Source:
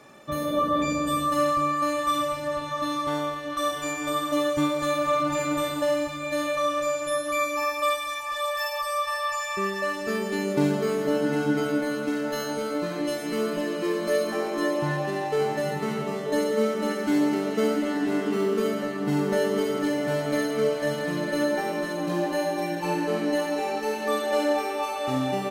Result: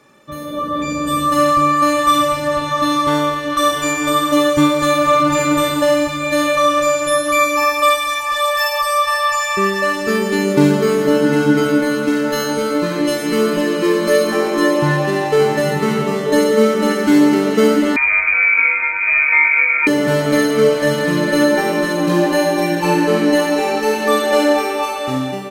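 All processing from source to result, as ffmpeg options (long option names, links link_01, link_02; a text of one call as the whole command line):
ffmpeg -i in.wav -filter_complex "[0:a]asettb=1/sr,asplit=3[link_01][link_02][link_03];[link_01]atrim=end=17.964[link_04];[link_02]atrim=start=17.96:end=19.87,asetpts=PTS-STARTPTS,afade=type=in:duration=0.004:curve=qsin,afade=type=out:start_time=1.906:duration=0.004:curve=qsin,highpass=230,lowpass=frequency=2300:width_type=q:width=0.5098,lowpass=frequency=2300:width_type=q:width=0.6013,lowpass=frequency=2300:width_type=q:width=0.9,lowpass=frequency=2300:width_type=q:width=2.563,afreqshift=-2700[link_05];[link_03]atrim=start=19.866[link_06];[link_04][link_05]acrossfade=duration=0.004:curve1=hsin:curve2=qsin[link_07];[link_07][link_06]acrossfade=duration=0.004:curve1=qsin:curve2=hsin,equalizer=frequency=700:width_type=o:width=0.2:gain=-12.5,dynaudnorm=framelen=460:gausssize=5:maxgain=14dB" out.wav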